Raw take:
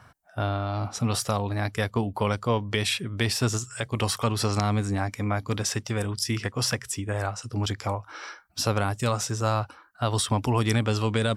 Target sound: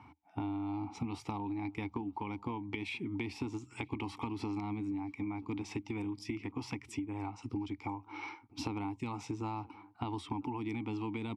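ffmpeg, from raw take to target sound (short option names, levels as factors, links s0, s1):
-filter_complex "[0:a]asplit=3[s0][s1][s2];[s0]bandpass=f=300:t=q:w=8,volume=1[s3];[s1]bandpass=f=870:t=q:w=8,volume=0.501[s4];[s2]bandpass=f=2240:t=q:w=8,volume=0.355[s5];[s3][s4][s5]amix=inputs=3:normalize=0,acompressor=threshold=0.00398:ratio=12,equalizer=f=81:w=2.3:g=14,asplit=2[s6][s7];[s7]adelay=983,lowpass=f=1300:p=1,volume=0.075,asplit=2[s8][s9];[s9]adelay=983,lowpass=f=1300:p=1,volume=0.32[s10];[s8][s10]amix=inputs=2:normalize=0[s11];[s6][s11]amix=inputs=2:normalize=0,volume=4.22"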